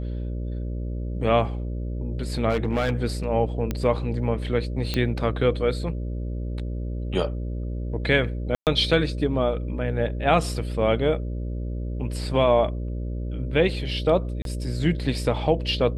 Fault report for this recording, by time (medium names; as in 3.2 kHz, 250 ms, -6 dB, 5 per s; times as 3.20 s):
buzz 60 Hz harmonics 10 -29 dBFS
2.49–2.92 s: clipped -18 dBFS
3.71 s: pop -13 dBFS
4.94 s: pop -11 dBFS
8.55–8.67 s: dropout 118 ms
14.42–14.45 s: dropout 32 ms